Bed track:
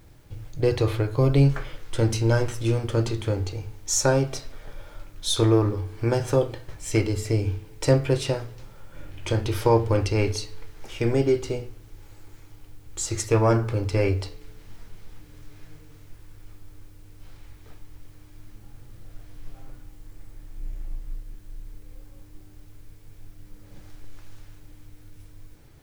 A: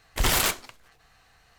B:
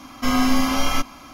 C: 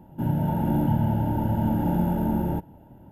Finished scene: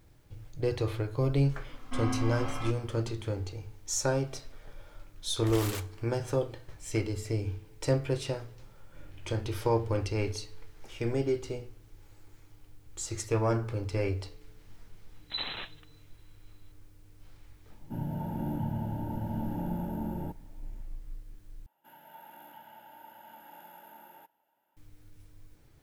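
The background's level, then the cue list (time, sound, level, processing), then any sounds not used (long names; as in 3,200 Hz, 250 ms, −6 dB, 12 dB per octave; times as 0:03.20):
bed track −8 dB
0:01.69: mix in B −14 dB + low-pass filter 2,400 Hz
0:05.29: mix in A −15.5 dB
0:15.14: mix in A −14 dB + voice inversion scrambler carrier 4,000 Hz
0:17.72: mix in C −10.5 dB
0:21.66: overwrite with C −9 dB + high-pass filter 1,400 Hz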